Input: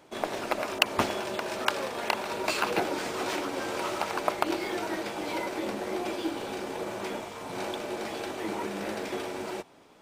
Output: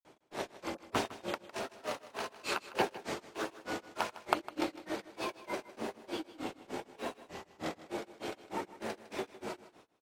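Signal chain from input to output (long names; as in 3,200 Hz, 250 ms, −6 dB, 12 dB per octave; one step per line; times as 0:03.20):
granular cloud 184 ms, grains 3.3 per second, pitch spread up and down by 3 semitones
single-tap delay 156 ms −16 dB
level −1.5 dB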